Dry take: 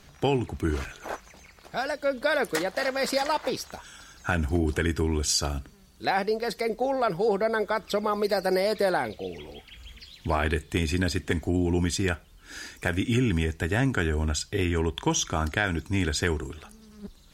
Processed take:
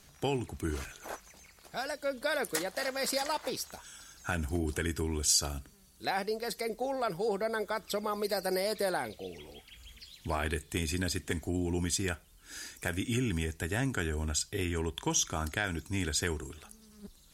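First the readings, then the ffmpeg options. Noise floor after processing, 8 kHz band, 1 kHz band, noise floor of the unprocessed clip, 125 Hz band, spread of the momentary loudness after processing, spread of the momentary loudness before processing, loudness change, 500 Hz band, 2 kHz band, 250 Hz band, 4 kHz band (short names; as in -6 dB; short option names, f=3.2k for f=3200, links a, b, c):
-59 dBFS, 0.0 dB, -7.0 dB, -54 dBFS, -7.5 dB, 14 LU, 15 LU, -6.0 dB, -7.5 dB, -6.5 dB, -7.5 dB, -3.5 dB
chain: -af "equalizer=f=11k:w=0.51:g=11.5,volume=-7.5dB"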